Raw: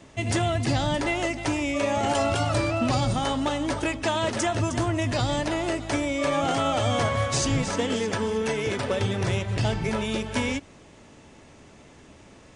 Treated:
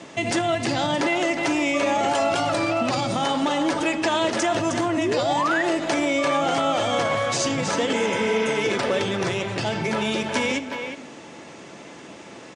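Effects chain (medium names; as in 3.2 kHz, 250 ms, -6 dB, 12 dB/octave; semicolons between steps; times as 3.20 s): low-pass 8.1 kHz 12 dB/octave; speakerphone echo 360 ms, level -11 dB; painted sound rise, 4.97–5.63 s, 270–2000 Hz -25 dBFS; on a send at -11 dB: reverberation RT60 0.85 s, pre-delay 6 ms; on the sum: peak limiter -19 dBFS, peak gain reduction 8 dB; spectral replace 7.96–8.52 s, 620–6200 Hz after; in parallel at +1 dB: compression, threshold -35 dBFS, peak gain reduction 11 dB; on the sum: high-pass 210 Hz 12 dB/octave; trim +3.5 dB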